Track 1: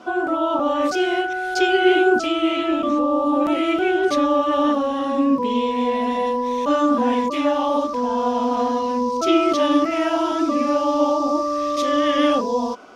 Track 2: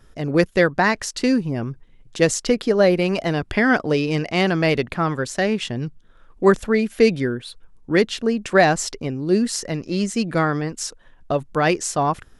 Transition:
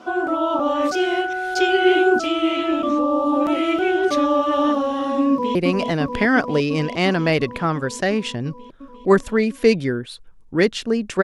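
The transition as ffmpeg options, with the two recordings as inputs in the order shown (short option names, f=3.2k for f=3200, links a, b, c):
-filter_complex "[0:a]apad=whole_dur=11.23,atrim=end=11.23,atrim=end=5.552[a];[1:a]atrim=start=2.908:end=8.59[b];[a][b]acrossfade=d=0.004:c1=hsin:c2=hsin,asplit=2[c][d];[d]afade=t=in:st=5.3:d=0.01,afade=t=out:st=5.55:d=0.01,aecho=0:1:350|700|1050|1400|1750|2100|2450|2800|3150|3500|3850|4200:0.630957|0.504766|0.403813|0.32305|0.25844|0.206752|0.165402|0.132321|0.105857|0.0846857|0.0677485|0.0541988[e];[c][e]amix=inputs=2:normalize=0"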